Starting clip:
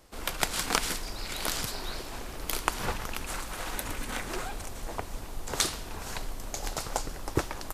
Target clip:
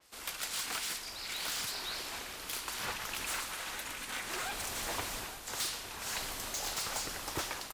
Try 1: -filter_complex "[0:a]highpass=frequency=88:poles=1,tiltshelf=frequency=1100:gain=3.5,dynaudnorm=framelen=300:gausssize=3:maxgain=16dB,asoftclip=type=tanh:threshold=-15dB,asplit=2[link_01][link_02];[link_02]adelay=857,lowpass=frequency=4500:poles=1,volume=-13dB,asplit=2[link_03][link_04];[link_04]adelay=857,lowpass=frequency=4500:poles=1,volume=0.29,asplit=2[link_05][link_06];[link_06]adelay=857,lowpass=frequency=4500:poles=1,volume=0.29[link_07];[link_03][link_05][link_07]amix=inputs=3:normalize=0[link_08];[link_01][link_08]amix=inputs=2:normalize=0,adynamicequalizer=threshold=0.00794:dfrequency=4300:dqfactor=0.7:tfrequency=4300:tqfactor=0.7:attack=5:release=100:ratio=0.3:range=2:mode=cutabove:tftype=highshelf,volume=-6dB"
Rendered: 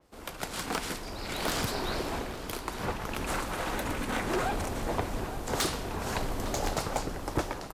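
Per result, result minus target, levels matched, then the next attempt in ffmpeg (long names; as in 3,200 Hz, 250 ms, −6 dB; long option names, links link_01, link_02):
1,000 Hz band +4.5 dB; soft clipping: distortion −5 dB
-filter_complex "[0:a]highpass=frequency=88:poles=1,tiltshelf=frequency=1100:gain=-7.5,dynaudnorm=framelen=300:gausssize=3:maxgain=16dB,asoftclip=type=tanh:threshold=-15dB,asplit=2[link_01][link_02];[link_02]adelay=857,lowpass=frequency=4500:poles=1,volume=-13dB,asplit=2[link_03][link_04];[link_04]adelay=857,lowpass=frequency=4500:poles=1,volume=0.29,asplit=2[link_05][link_06];[link_06]adelay=857,lowpass=frequency=4500:poles=1,volume=0.29[link_07];[link_03][link_05][link_07]amix=inputs=3:normalize=0[link_08];[link_01][link_08]amix=inputs=2:normalize=0,adynamicequalizer=threshold=0.00794:dfrequency=4300:dqfactor=0.7:tfrequency=4300:tqfactor=0.7:attack=5:release=100:ratio=0.3:range=2:mode=cutabove:tftype=highshelf,volume=-6dB"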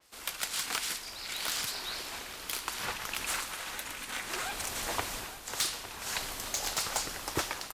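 soft clipping: distortion −5 dB
-filter_complex "[0:a]highpass=frequency=88:poles=1,tiltshelf=frequency=1100:gain=-7.5,dynaudnorm=framelen=300:gausssize=3:maxgain=16dB,asoftclip=type=tanh:threshold=-24dB,asplit=2[link_01][link_02];[link_02]adelay=857,lowpass=frequency=4500:poles=1,volume=-13dB,asplit=2[link_03][link_04];[link_04]adelay=857,lowpass=frequency=4500:poles=1,volume=0.29,asplit=2[link_05][link_06];[link_06]adelay=857,lowpass=frequency=4500:poles=1,volume=0.29[link_07];[link_03][link_05][link_07]amix=inputs=3:normalize=0[link_08];[link_01][link_08]amix=inputs=2:normalize=0,adynamicequalizer=threshold=0.00794:dfrequency=4300:dqfactor=0.7:tfrequency=4300:tqfactor=0.7:attack=5:release=100:ratio=0.3:range=2:mode=cutabove:tftype=highshelf,volume=-6dB"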